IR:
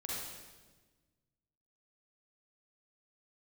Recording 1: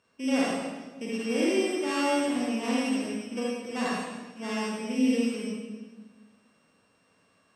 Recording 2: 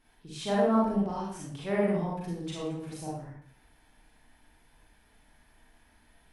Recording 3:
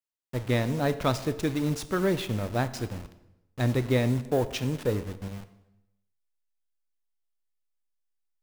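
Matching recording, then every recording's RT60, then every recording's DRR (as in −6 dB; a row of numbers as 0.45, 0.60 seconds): 1; 1.3, 0.60, 0.95 seconds; −6.0, −6.0, 11.5 decibels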